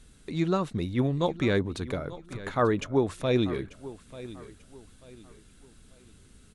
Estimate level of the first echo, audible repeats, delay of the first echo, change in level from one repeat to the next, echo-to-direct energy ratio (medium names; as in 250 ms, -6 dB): -16.5 dB, 2, 890 ms, -9.5 dB, -16.0 dB